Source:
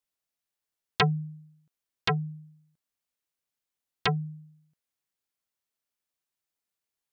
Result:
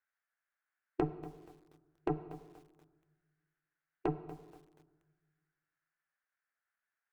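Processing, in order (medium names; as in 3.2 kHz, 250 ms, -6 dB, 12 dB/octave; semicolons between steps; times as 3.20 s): median filter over 9 samples; compression 6:1, threshold -35 dBFS, peak gain reduction 14 dB; auto-wah 450–2200 Hz, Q 4.5, down, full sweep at -45.5 dBFS; Chebyshev shaper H 4 -24 dB, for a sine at -29 dBFS; formant shift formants -5 st; on a send at -12 dB: reverberation RT60 1.4 s, pre-delay 3 ms; on the sum: bit-crushed delay 239 ms, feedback 35%, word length 11-bit, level -15 dB; trim +12.5 dB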